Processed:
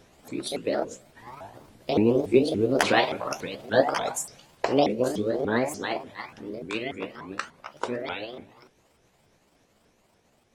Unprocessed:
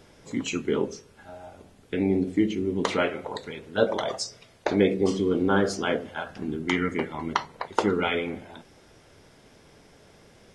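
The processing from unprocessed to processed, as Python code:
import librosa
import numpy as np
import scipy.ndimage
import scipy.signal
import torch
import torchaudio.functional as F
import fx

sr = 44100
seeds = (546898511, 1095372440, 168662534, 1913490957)

y = fx.pitch_ramps(x, sr, semitones=8.5, every_ms=287)
y = fx.doppler_pass(y, sr, speed_mps=8, closest_m=11.0, pass_at_s=2.8)
y = F.gain(torch.from_numpy(y), 5.0).numpy()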